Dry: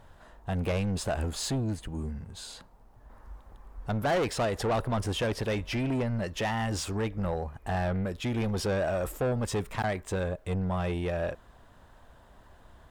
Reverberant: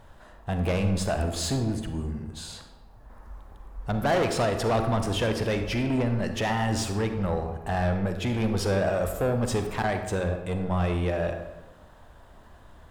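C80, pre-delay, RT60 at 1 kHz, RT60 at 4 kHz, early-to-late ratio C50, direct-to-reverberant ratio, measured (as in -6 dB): 9.5 dB, 36 ms, 1.1 s, 0.70 s, 7.0 dB, 6.0 dB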